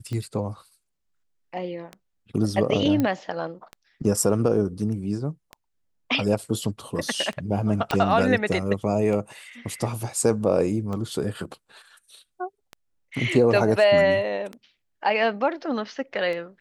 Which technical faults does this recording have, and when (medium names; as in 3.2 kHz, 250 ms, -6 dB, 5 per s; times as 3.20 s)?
tick 33 1/3 rpm -21 dBFS
3.00 s: pop -12 dBFS
7.91 s: pop -10 dBFS